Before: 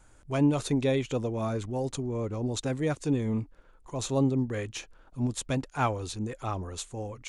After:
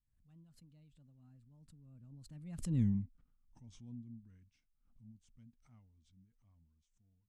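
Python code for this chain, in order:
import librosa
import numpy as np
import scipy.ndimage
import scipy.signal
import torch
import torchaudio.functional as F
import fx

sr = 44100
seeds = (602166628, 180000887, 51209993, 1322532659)

y = fx.doppler_pass(x, sr, speed_mps=44, closest_m=2.6, pass_at_s=2.81)
y = fx.curve_eq(y, sr, hz=(240.0, 370.0, 2100.0), db=(0, -24, -15))
y = fx.pre_swell(y, sr, db_per_s=83.0)
y = y * librosa.db_to_amplitude(2.0)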